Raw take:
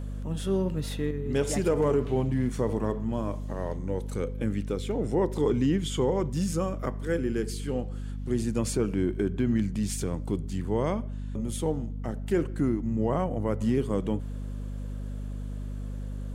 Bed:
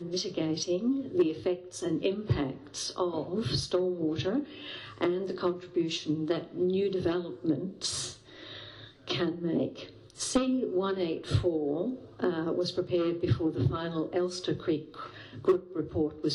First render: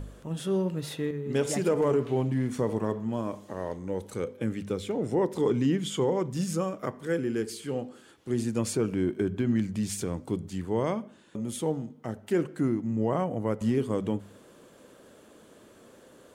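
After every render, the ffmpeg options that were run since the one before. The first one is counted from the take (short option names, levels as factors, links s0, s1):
-af "bandreject=f=50:t=h:w=4,bandreject=f=100:t=h:w=4,bandreject=f=150:t=h:w=4,bandreject=f=200:t=h:w=4,bandreject=f=250:t=h:w=4"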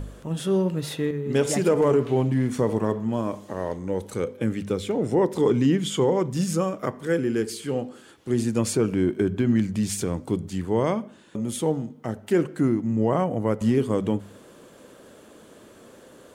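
-af "volume=1.78"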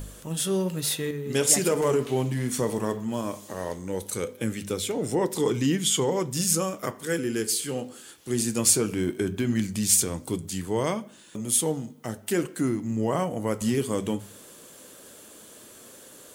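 -af "flanger=delay=6.2:depth=7.5:regen=-74:speed=0.18:shape=sinusoidal,crystalizer=i=5:c=0"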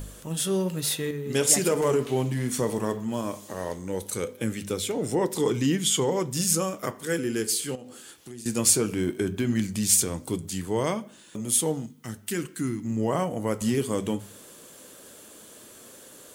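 -filter_complex "[0:a]asettb=1/sr,asplit=3[s0][s1][s2];[s0]atrim=end=7.754[s3];[s1]atrim=start=7.75:end=8.46,asetpts=PTS-STARTPTS,afade=t=in:d=0.004:c=qsin,afade=t=out:st=0.706:d=0.004:c=qsin,acompressor=threshold=0.0112:ratio=5:attack=3.2:release=140:knee=1:detection=peak[s4];[s2]atrim=start=8.456[s5];[s3][s4]acrossfade=d=0.004:c1=hsin:c2=qsin[s6];[s6][s5]acrossfade=d=0.004:c1=qsin:c2=hsin,asettb=1/sr,asplit=3[s7][s8][s9];[s7]atrim=end=11.864[s10];[s8]atrim=start=11.86:end=12.85,asetpts=PTS-STARTPTS,afade=t=in:d=0.004:c=qsin,afade=t=out:st=0.986:d=0.004:c=qsin,equalizer=f=610:t=o:w=1.3:g=-13.5[s11];[s9]atrim=start=12.846[s12];[s10][s11]acrossfade=d=0.004:c1=hsin:c2=qsin[s13];[s13][s12]acrossfade=d=0.004:c1=qsin:c2=hsin"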